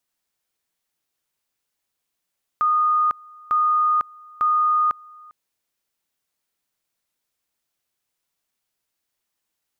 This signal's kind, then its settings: two-level tone 1230 Hz -15.5 dBFS, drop 26 dB, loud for 0.50 s, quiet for 0.40 s, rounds 3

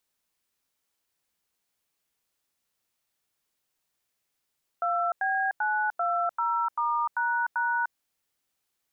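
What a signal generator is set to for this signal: DTMF "2B920*##", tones 0.3 s, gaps 91 ms, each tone -26.5 dBFS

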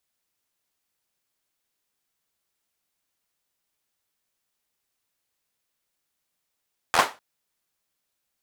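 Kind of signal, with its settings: hand clap length 0.25 s, bursts 5, apart 12 ms, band 900 Hz, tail 0.26 s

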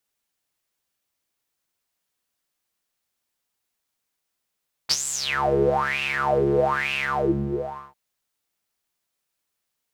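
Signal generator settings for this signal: synth patch with filter wobble C#3, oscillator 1 triangle, oscillator 2 square, interval -12 st, oscillator 2 level -2 dB, noise -13.5 dB, filter bandpass, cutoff 380 Hz, Q 11, filter envelope 3.5 oct, filter decay 0.74 s, attack 21 ms, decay 0.05 s, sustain -9.5 dB, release 0.94 s, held 2.11 s, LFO 1.1 Hz, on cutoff 1.4 oct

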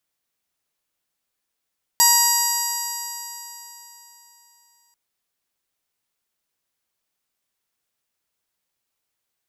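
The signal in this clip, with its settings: stretched partials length 2.94 s, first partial 948 Hz, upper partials -8/-16/-17/0/-3/-5.5/3.5/-12/-17/-12.5/-1.5/-12 dB, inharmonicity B 0.00047, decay 3.56 s, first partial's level -18.5 dB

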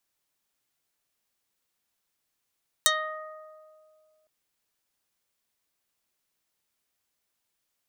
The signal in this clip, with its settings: plucked string D#5, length 1.41 s, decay 2.31 s, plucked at 0.26, dark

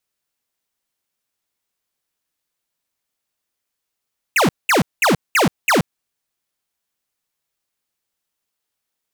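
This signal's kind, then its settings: burst of laser zaps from 2900 Hz, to 130 Hz, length 0.13 s square, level -14 dB, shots 5, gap 0.20 s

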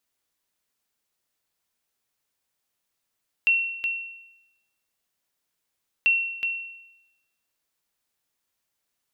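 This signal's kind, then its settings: sonar ping 2720 Hz, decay 0.91 s, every 2.59 s, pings 2, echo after 0.37 s, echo -6 dB -14 dBFS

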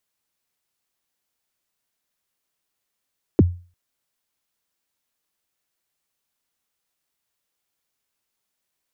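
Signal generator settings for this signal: kick drum length 0.35 s, from 440 Hz, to 88 Hz, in 29 ms, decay 0.36 s, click off, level -6.5 dB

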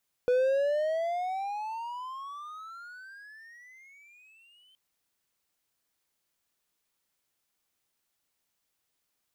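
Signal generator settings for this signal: gliding synth tone triangle, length 4.47 s, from 490 Hz, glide +32 st, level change -38 dB, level -19 dB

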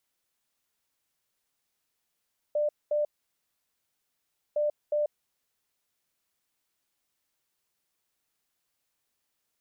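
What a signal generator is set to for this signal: beep pattern sine 595 Hz, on 0.14 s, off 0.22 s, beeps 2, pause 1.51 s, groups 2, -23.5 dBFS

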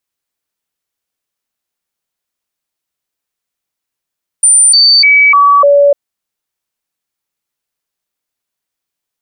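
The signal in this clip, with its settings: stepped sine 9130 Hz down, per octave 1, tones 5, 0.30 s, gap 0.00 s -3 dBFS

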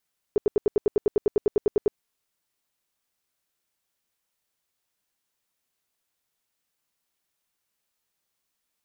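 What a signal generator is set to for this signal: tone bursts 415 Hz, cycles 8, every 0.10 s, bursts 16, -15 dBFS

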